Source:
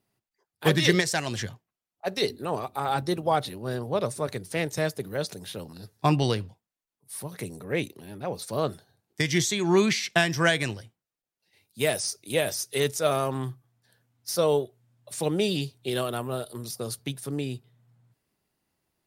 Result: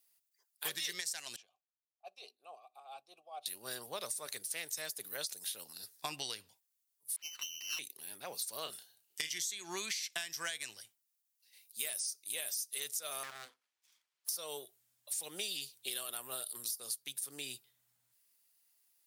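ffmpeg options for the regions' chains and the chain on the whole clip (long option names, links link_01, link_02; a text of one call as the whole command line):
ffmpeg -i in.wav -filter_complex "[0:a]asettb=1/sr,asplit=3[link_01][link_02][link_03];[link_01]atrim=end=1.364[link_04];[link_02]atrim=start=1.36:end=3.46,asetpts=PTS-STARTPTS,afade=type=in:duration=0.004:curve=qsin,afade=type=out:start_time=2.096:duration=0.004:curve=qsin,equalizer=frequency=1500:width_type=o:width=1.2:gain=-8.5,tremolo=f=4.4:d=0.57,asplit=3[link_05][link_06][link_07];[link_05]bandpass=frequency=730:width_type=q:width=8,volume=0dB[link_08];[link_06]bandpass=frequency=1090:width_type=q:width=8,volume=-6dB[link_09];[link_07]bandpass=frequency=2440:width_type=q:width=8,volume=-9dB[link_10];[link_08][link_09][link_10]amix=inputs=3:normalize=0[link_11];[link_03]atrim=start=3.456[link_12];[link_04][link_11]acrossfade=duration=0.004:curve1=hsin:curve2=qsin[link_13];[link_13][link_12]acrossfade=duration=0.004:curve1=qsin:curve2=hsin,asettb=1/sr,asplit=3[link_14][link_15][link_16];[link_14]atrim=end=7.164[link_17];[link_15]atrim=start=7.16:end=7.79,asetpts=PTS-STARTPTS,afade=type=in:duration=0.004:curve=qsin,afade=type=out:start_time=0.626:duration=0.004:curve=qsin,lowpass=frequency=2700:width_type=q:width=0.5098,lowpass=frequency=2700:width_type=q:width=0.6013,lowpass=frequency=2700:width_type=q:width=0.9,lowpass=frequency=2700:width_type=q:width=2.563,afreqshift=-3200,aeval=exprs='max(val(0),0)':channel_layout=same[link_18];[link_16]atrim=start=7.786[link_19];[link_17][link_18]acrossfade=duration=0.004:curve1=hsin:curve2=qsin[link_20];[link_20][link_19]acrossfade=duration=0.004:curve1=qsin:curve2=hsin,asettb=1/sr,asplit=3[link_21][link_22][link_23];[link_21]atrim=end=8.624[link_24];[link_22]atrim=start=8.62:end=9.33,asetpts=PTS-STARTPTS,afade=type=in:duration=0.004:curve=qsin,afade=type=out:start_time=0.706:duration=0.004:curve=qsin,equalizer=frequency=2900:width=6.5:gain=11,asplit=2[link_25][link_26];[link_26]adelay=32,volume=-7dB[link_27];[link_25][link_27]amix=inputs=2:normalize=0,atrim=end_sample=31311[link_28];[link_23]atrim=start=9.326[link_29];[link_24][link_28]acrossfade=duration=0.004:curve1=hsin:curve2=qsin[link_30];[link_30][link_29]acrossfade=duration=0.004:curve1=qsin:curve2=hsin,asettb=1/sr,asplit=3[link_31][link_32][link_33];[link_31]atrim=end=13.234[link_34];[link_32]atrim=start=13.23:end=14.29,asetpts=PTS-STARTPTS,afade=type=in:duration=0.004:curve=qsin,afade=type=out:start_time=1.056:duration=0.004:curve=qsin,highpass=290,lowpass=3500,aeval=exprs='abs(val(0))':channel_layout=same[link_35];[link_33]atrim=start=14.286[link_36];[link_34][link_35]acrossfade=duration=0.004:curve1=hsin:curve2=qsin[link_37];[link_37][link_36]acrossfade=duration=0.004:curve1=qsin:curve2=hsin,aderivative,acompressor=threshold=-44dB:ratio=6,volume=7.5dB" out.wav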